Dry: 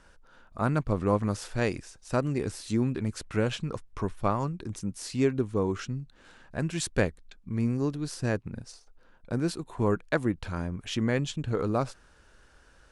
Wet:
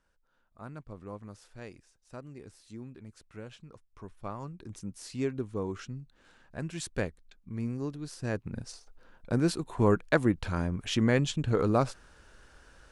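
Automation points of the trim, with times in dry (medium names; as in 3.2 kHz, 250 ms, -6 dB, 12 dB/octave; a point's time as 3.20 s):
3.83 s -17.5 dB
4.78 s -6.5 dB
8.20 s -6.5 dB
8.62 s +2 dB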